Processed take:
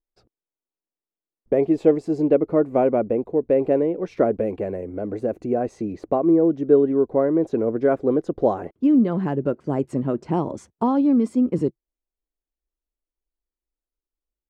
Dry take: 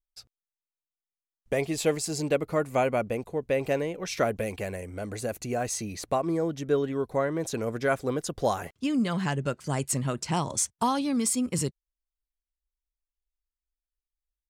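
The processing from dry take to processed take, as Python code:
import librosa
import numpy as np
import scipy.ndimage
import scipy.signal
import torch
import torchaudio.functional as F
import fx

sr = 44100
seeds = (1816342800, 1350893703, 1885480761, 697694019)

y = fx.curve_eq(x, sr, hz=(130.0, 330.0, 12000.0), db=(0, 13, -29))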